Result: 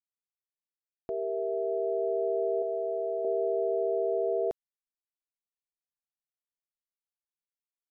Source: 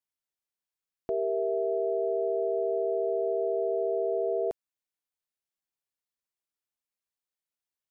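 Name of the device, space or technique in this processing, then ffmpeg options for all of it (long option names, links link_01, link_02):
voice memo with heavy noise removal: -filter_complex "[0:a]asettb=1/sr,asplit=3[link_01][link_02][link_03];[link_01]atrim=end=2.624[link_04];[link_02]atrim=start=2.62:end=3.25,asetpts=PTS-STARTPTS,afade=type=in:duration=0.004:curve=qsin,afade=type=out:start_time=0.626:duration=0.004:curve=qsin,tiltshelf=frequency=780:gain=-8.5[link_05];[link_03]atrim=start=3.246[link_06];[link_04][link_05]acrossfade=duration=0.004:curve1=hsin:curve2=qsin[link_07];[link_07][link_06]acrossfade=duration=0.004:curve1=qsin:curve2=hsin,anlmdn=0.0251,dynaudnorm=framelen=290:gausssize=11:maxgain=5dB,volume=-5dB"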